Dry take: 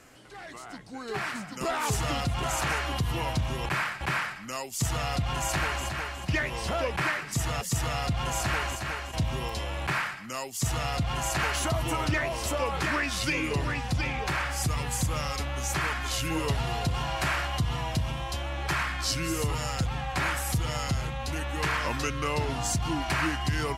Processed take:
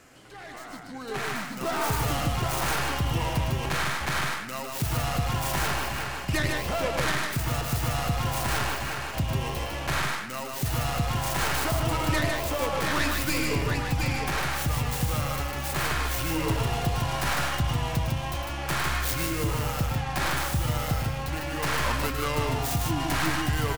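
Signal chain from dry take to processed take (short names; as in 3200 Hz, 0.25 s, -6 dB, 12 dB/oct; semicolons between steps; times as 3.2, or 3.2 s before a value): tracing distortion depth 0.5 ms; on a send: loudspeakers at several distances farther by 37 m -9 dB, 52 m -4 dB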